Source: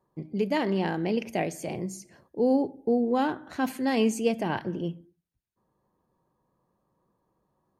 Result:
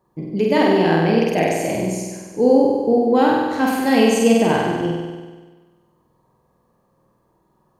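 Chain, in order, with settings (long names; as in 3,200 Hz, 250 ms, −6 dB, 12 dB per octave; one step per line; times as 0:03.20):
flutter between parallel walls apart 8.3 metres, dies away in 1.4 s
level +7 dB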